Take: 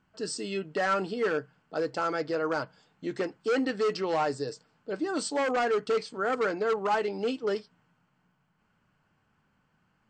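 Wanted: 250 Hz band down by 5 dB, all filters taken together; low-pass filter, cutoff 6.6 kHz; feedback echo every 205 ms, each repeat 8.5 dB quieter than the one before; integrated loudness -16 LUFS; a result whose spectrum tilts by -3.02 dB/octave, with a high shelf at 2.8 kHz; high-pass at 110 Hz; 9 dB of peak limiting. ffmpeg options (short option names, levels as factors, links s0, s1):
-af "highpass=110,lowpass=6600,equalizer=f=250:t=o:g=-6.5,highshelf=f=2800:g=-4.5,alimiter=level_in=1.58:limit=0.0631:level=0:latency=1,volume=0.631,aecho=1:1:205|410|615|820:0.376|0.143|0.0543|0.0206,volume=11.2"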